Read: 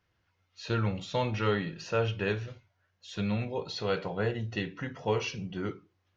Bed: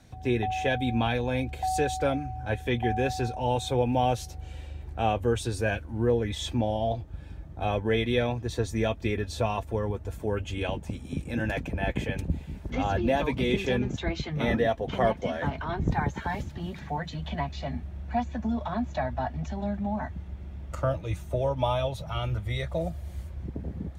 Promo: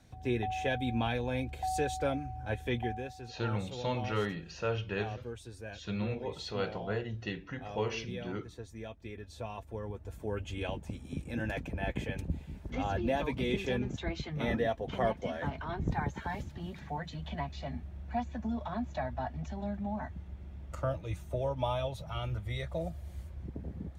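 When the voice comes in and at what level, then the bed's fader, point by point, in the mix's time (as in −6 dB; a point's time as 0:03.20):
2.70 s, −4.5 dB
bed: 0:02.80 −5.5 dB
0:03.13 −17 dB
0:08.98 −17 dB
0:10.43 −6 dB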